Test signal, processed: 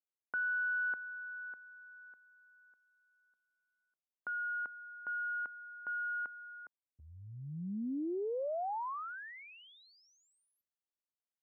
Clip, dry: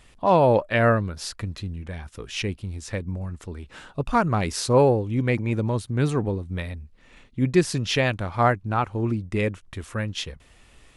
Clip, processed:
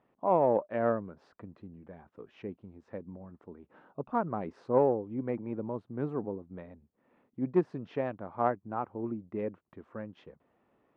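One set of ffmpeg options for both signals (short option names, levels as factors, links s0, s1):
-af "aeval=exprs='0.531*(cos(1*acos(clip(val(0)/0.531,-1,1)))-cos(1*PI/2))+0.0944*(cos(3*acos(clip(val(0)/0.531,-1,1)))-cos(3*PI/2))+0.00422*(cos(4*acos(clip(val(0)/0.531,-1,1)))-cos(4*PI/2))+0.0106*(cos(5*acos(clip(val(0)/0.531,-1,1)))-cos(5*PI/2))+0.00596*(cos(6*acos(clip(val(0)/0.531,-1,1)))-cos(6*PI/2))':c=same,asuperpass=centerf=450:order=4:qfactor=0.52,volume=0.668"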